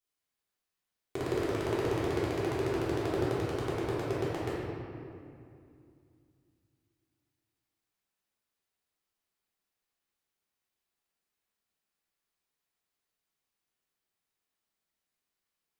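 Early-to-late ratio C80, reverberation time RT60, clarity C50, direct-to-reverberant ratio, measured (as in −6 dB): −0.5 dB, 2.4 s, −3.0 dB, −9.0 dB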